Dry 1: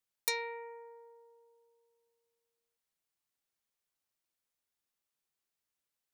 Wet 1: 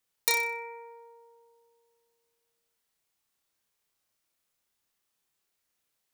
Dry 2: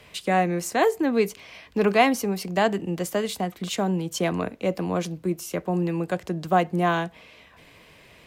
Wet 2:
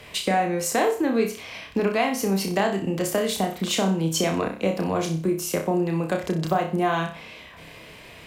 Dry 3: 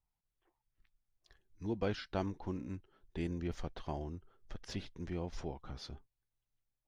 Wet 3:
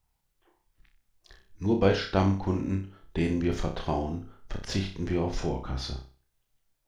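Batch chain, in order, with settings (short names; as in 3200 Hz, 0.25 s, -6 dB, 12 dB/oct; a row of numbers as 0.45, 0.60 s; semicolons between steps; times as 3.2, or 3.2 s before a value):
compressor 6:1, threshold -26 dBFS; flutter echo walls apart 5.3 m, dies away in 0.38 s; normalise peaks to -9 dBFS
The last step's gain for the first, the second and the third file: +7.0, +5.5, +11.0 dB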